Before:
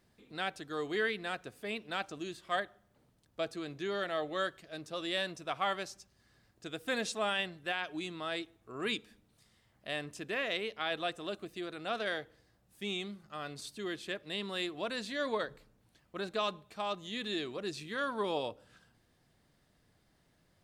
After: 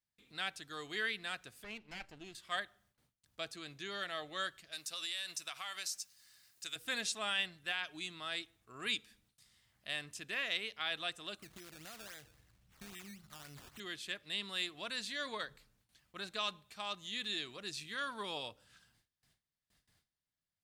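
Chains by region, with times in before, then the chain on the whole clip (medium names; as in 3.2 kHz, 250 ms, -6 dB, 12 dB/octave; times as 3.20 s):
1.64–2.35 s: comb filter that takes the minimum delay 0.41 ms + low-pass 1.5 kHz 6 dB/octave
4.72–6.76 s: tilt EQ +3.5 dB/octave + band-stop 3.3 kHz, Q 23 + compression, threshold -36 dBFS
11.42–13.80 s: compression 4:1, threshold -46 dBFS + bass shelf 270 Hz +10 dB + decimation with a swept rate 15× 3.7 Hz
whole clip: gate with hold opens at -59 dBFS; amplifier tone stack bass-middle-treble 5-5-5; trim +8.5 dB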